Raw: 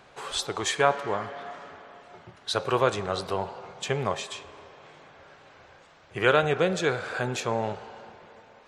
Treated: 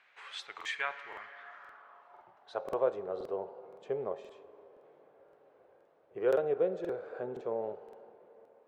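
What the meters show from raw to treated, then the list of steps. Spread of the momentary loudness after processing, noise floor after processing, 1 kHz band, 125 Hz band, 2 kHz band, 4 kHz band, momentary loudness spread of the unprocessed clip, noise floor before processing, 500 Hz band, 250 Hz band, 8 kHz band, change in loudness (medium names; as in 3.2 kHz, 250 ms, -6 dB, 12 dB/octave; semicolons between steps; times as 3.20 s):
21 LU, -65 dBFS, -14.0 dB, -20.5 dB, -12.0 dB, under -15 dB, 18 LU, -55 dBFS, -6.0 dB, -10.5 dB, under -20 dB, -8.5 dB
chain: band-pass sweep 2.1 kHz -> 460 Hz, 1.21–3.08 s; crackling interface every 0.52 s, samples 2048, repeat, from 0.56 s; trim -3 dB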